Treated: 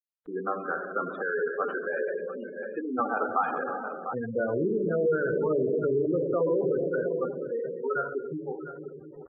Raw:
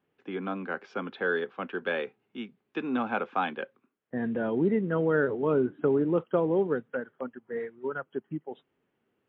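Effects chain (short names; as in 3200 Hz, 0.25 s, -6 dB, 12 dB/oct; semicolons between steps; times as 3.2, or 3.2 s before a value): reverb RT60 2.4 s, pre-delay 7 ms, DRR 3 dB; low-pass opened by the level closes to 2100 Hz, open at -22 dBFS; vibrato 2.5 Hz 13 cents; feedback echo 0.699 s, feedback 17%, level -12.5 dB; requantised 8-bit, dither none; spectral gate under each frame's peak -15 dB strong; graphic EQ 125/250/1000/2000 Hz -5/-12/-10/+8 dB; limiter -26 dBFS, peak gain reduction 9 dB; resonant high shelf 1600 Hz -10 dB, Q 3; mismatched tape noise reduction decoder only; gain +6.5 dB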